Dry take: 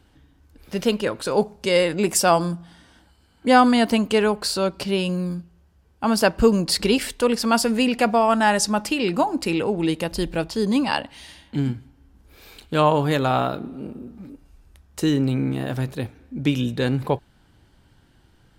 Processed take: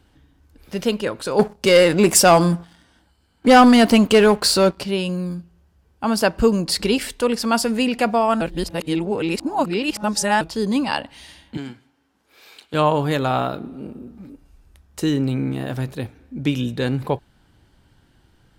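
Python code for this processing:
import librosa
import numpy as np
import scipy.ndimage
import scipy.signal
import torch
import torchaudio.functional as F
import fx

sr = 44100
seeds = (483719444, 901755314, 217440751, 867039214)

y = fx.leveller(x, sr, passes=2, at=(1.39, 4.78))
y = fx.weighting(y, sr, curve='A', at=(11.57, 12.74))
y = fx.edit(y, sr, fx.reverse_span(start_s=8.41, length_s=2.0), tone=tone)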